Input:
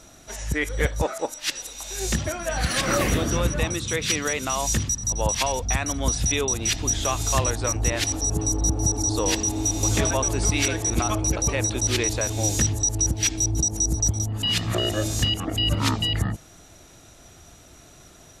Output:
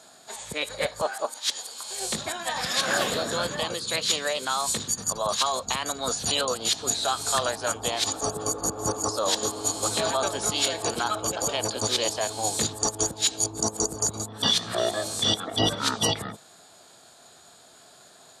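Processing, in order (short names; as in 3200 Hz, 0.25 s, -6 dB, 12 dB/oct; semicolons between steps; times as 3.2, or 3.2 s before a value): speaker cabinet 250–9400 Hz, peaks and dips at 310 Hz -8 dB, 450 Hz +3 dB, 1100 Hz +3 dB, 2000 Hz -8 dB, 3200 Hz +8 dB; formant shift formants +3 st; gain -1.5 dB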